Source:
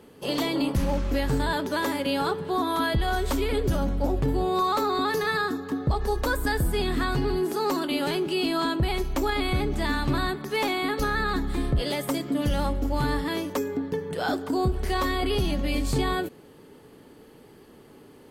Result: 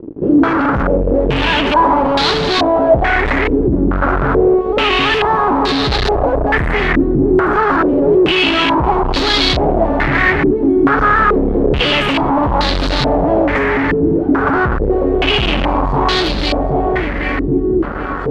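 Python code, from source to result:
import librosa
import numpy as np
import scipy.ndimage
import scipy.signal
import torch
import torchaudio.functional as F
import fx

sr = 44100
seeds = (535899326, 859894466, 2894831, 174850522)

y = fx.echo_feedback(x, sr, ms=775, feedback_pct=54, wet_db=-12.5)
y = fx.fuzz(y, sr, gain_db=44.0, gate_db=-48.0)
y = fx.filter_held_lowpass(y, sr, hz=2.3, low_hz=330.0, high_hz=4100.0)
y = F.gain(torch.from_numpy(y), -1.5).numpy()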